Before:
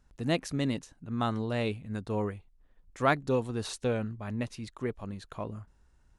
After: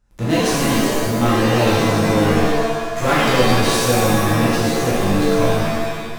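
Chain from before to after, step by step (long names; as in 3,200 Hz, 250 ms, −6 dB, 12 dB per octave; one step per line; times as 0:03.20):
in parallel at −12 dB: fuzz pedal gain 45 dB, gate −50 dBFS
on the sum: reverb with rising layers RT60 1.4 s, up +7 semitones, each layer −2 dB, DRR −7.5 dB
level −3 dB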